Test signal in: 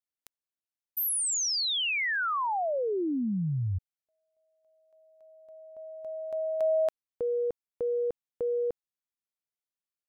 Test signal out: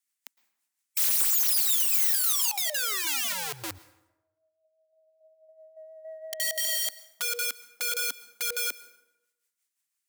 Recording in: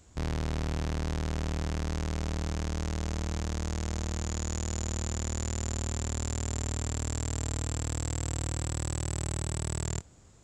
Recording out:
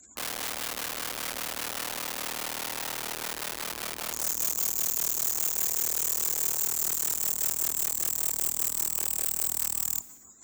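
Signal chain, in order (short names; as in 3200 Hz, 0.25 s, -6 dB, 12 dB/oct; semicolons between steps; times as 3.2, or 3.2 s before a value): tracing distortion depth 0.055 ms; spectral gate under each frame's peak -25 dB strong; in parallel at -5.5 dB: soft clip -29.5 dBFS; on the sum: rotary speaker horn 6 Hz; tremolo triangle 5 Hz, depth 45%; ten-band EQ 125 Hz -8 dB, 250 Hz +11 dB, 500 Hz -6 dB, 1000 Hz +6 dB, 2000 Hz +8 dB, 8000 Hz +7 dB; wrapped overs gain 31.5 dB; tilt +3.5 dB/oct; plate-style reverb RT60 0.94 s, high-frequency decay 0.65×, pre-delay 0.1 s, DRR 17.5 dB; short-mantissa float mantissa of 6-bit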